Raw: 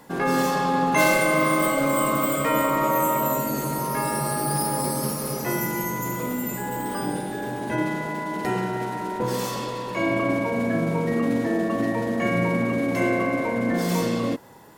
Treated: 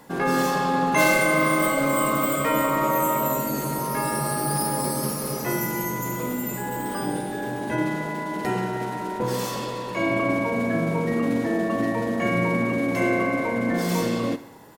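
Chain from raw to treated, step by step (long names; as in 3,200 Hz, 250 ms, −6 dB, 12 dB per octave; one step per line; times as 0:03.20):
repeating echo 71 ms, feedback 58%, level −17 dB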